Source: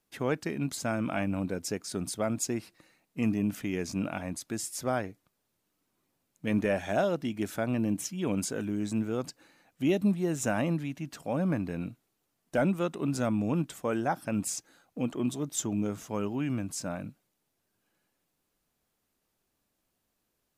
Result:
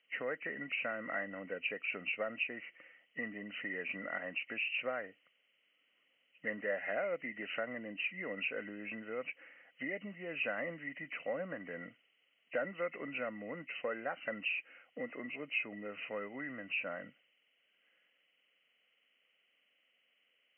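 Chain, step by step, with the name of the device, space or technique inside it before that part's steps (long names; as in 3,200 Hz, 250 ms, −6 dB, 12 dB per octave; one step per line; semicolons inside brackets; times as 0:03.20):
hearing aid with frequency lowering (hearing-aid frequency compression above 1,800 Hz 4 to 1; downward compressor 3 to 1, threshold −34 dBFS, peak gain reduction 9.5 dB; loudspeaker in its box 360–5,100 Hz, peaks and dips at 360 Hz −8 dB, 520 Hz +7 dB, 900 Hz −9 dB, 1,400 Hz +5 dB, 2,000 Hz +8 dB, 4,000 Hz +4 dB)
level −2 dB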